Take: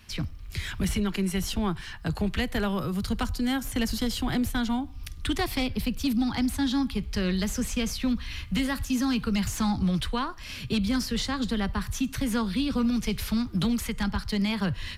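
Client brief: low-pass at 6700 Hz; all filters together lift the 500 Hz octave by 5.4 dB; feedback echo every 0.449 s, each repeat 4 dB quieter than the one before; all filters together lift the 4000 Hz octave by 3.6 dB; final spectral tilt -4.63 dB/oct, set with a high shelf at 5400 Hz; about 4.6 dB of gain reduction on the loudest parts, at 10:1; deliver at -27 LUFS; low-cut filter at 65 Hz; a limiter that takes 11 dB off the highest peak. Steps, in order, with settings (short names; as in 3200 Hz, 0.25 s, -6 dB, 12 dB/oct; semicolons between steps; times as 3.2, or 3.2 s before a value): HPF 65 Hz; LPF 6700 Hz; bell 500 Hz +6.5 dB; bell 4000 Hz +6.5 dB; high shelf 5400 Hz -4 dB; compressor 10:1, threshold -25 dBFS; limiter -26 dBFS; feedback echo 0.449 s, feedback 63%, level -4 dB; gain +5.5 dB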